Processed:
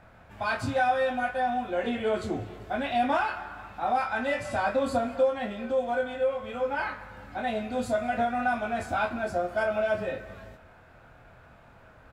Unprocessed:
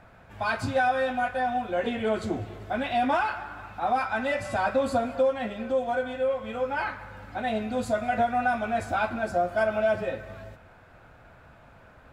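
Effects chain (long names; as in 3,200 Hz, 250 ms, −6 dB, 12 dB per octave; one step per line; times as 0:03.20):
double-tracking delay 25 ms −5.5 dB
level −2 dB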